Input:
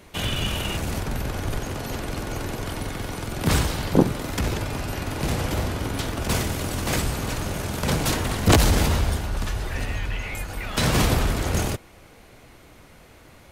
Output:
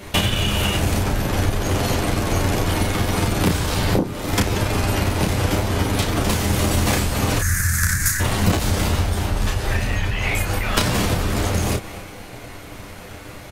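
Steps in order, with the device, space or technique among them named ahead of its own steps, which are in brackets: 7.39–8.20 s: FFT filter 100 Hz 0 dB, 510 Hz -30 dB, 940 Hz -20 dB, 1.7 kHz +10 dB, 3 kHz -19 dB, 6.5 kHz +6 dB; drum-bus smash (transient shaper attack +9 dB, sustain +5 dB; compression 16:1, threshold -26 dBFS, peak gain reduction 24 dB; saturation -14.5 dBFS, distortion -30 dB); early reflections 10 ms -3.5 dB, 34 ms -3.5 dB; trim +8.5 dB

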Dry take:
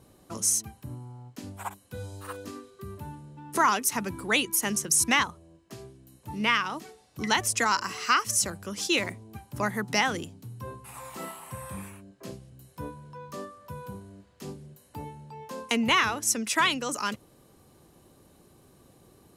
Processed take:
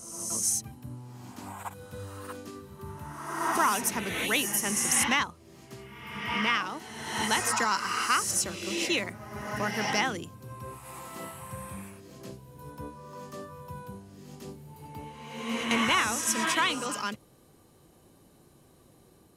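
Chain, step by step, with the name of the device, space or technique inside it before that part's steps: reverse reverb (reverse; reverberation RT60 1.3 s, pre-delay 80 ms, DRR 3 dB; reverse); trim -3 dB

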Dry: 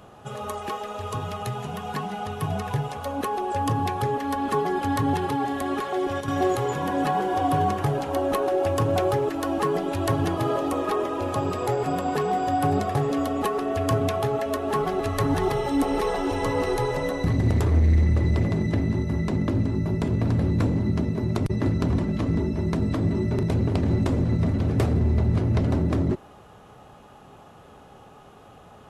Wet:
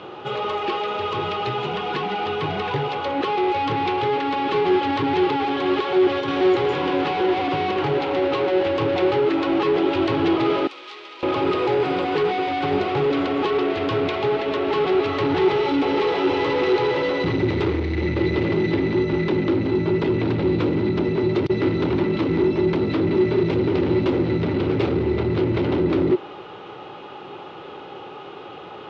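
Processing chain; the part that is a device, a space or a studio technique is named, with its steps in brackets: overdrive pedal into a guitar cabinet (overdrive pedal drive 25 dB, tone 4.5 kHz, clips at -12 dBFS; cabinet simulation 92–4000 Hz, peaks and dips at 230 Hz -7 dB, 350 Hz +9 dB, 670 Hz -10 dB, 1.1 kHz -6 dB, 1.7 kHz -8 dB); 10.67–11.23 s: differentiator; trim -1 dB

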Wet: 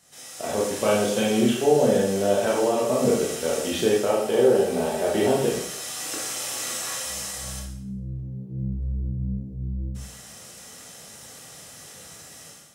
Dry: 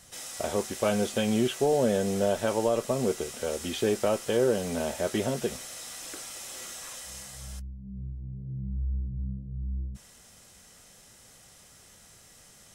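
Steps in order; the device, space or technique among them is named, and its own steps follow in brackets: 4.10–5.44 s: graphic EQ with 31 bands 400 Hz +6 dB, 800 Hz +8 dB, 6.3 kHz -4 dB; far laptop microphone (reverberation RT60 0.65 s, pre-delay 19 ms, DRR -3 dB; high-pass 110 Hz 12 dB/octave; level rider gain up to 12.5 dB); trim -6.5 dB

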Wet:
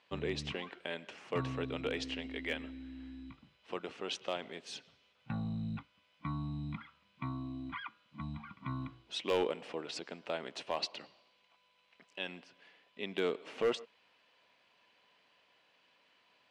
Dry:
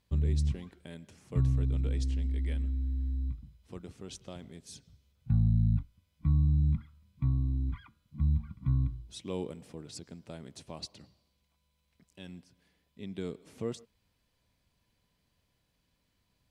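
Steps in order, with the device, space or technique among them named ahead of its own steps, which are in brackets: megaphone (band-pass 570–3000 Hz; peaking EQ 2.8 kHz +6 dB 0.28 oct; hard clipper -37.5 dBFS, distortion -17 dB); trim +13 dB

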